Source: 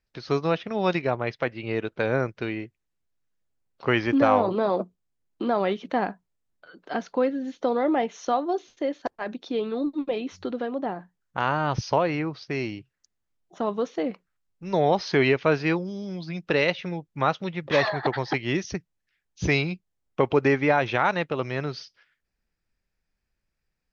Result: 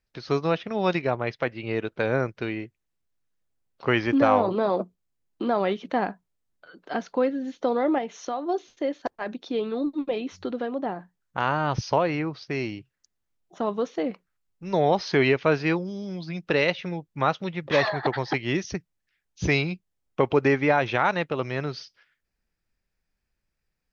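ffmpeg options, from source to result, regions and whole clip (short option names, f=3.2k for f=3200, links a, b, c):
-filter_complex "[0:a]asettb=1/sr,asplit=3[a][b][c];[a]atrim=end=7.984[d];[b]atrim=start=7.98:end=8.47,asetpts=PTS-STARTPTS,afade=t=in:d=0.004:c=qsin,afade=t=out:st=0.486:d=0.004:c=qsin,highpass=42,acompressor=threshold=-29dB:ratio=2:attack=3.2:release=140:knee=1:detection=peak[e];[c]atrim=start=8.466[f];[d][e]acrossfade=d=0.004:c1=hsin:c2=qsin[g];[g][f]acrossfade=d=0.004:c1=qsin:c2=hsin"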